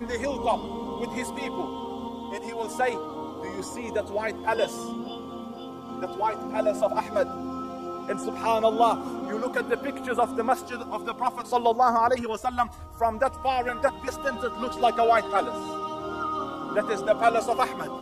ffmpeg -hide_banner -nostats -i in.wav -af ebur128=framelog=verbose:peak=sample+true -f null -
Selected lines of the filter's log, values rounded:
Integrated loudness:
  I:         -27.3 LUFS
  Threshold: -37.4 LUFS
Loudness range:
  LRA:         5.6 LU
  Threshold: -47.4 LUFS
  LRA low:   -31.2 LUFS
  LRA high:  -25.6 LUFS
Sample peak:
  Peak:       -7.1 dBFS
True peak:
  Peak:       -7.1 dBFS